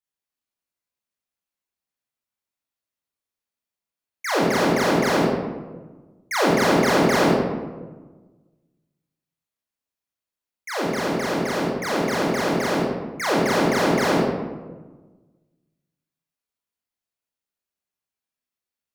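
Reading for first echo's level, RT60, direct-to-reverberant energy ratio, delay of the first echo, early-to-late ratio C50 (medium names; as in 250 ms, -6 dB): no echo, 1.3 s, -5.0 dB, no echo, -0.5 dB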